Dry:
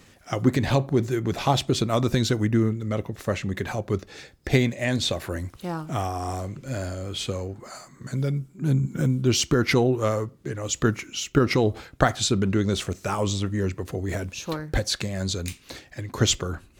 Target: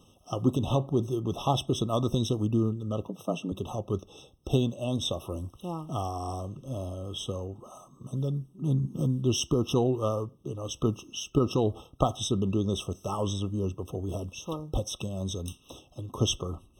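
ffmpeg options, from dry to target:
-filter_complex "[0:a]asettb=1/sr,asplit=3[a][b][c];[a]atrim=end=3.084[d];[b]atrim=start=3.08:end=3.52,asetpts=PTS-STARTPTS,afade=t=in:d=0.004:c=qsin,afade=t=out:st=0.436:d=0.004:c=qsin,afreqshift=78[e];[c]atrim=start=3.516[f];[d][e]acrossfade=d=0.004:c1=hsin:c2=qsin[g];[g][f]acrossfade=d=0.004:c1=qsin:c2=hsin,afftfilt=real='re*eq(mod(floor(b*sr/1024/1300),2),0)':imag='im*eq(mod(floor(b*sr/1024/1300),2),0)':win_size=1024:overlap=0.75,volume=-4.5dB"

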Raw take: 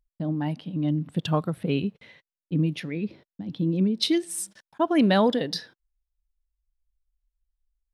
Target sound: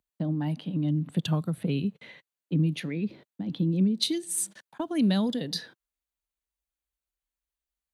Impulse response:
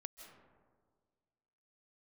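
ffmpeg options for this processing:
-filter_complex "[0:a]highpass=130,bandreject=f=5.3k:w=6.1,acrossover=split=220|4200[a][b][c];[b]acompressor=threshold=-37dB:ratio=6[d];[a][d][c]amix=inputs=3:normalize=0,volume=3dB"

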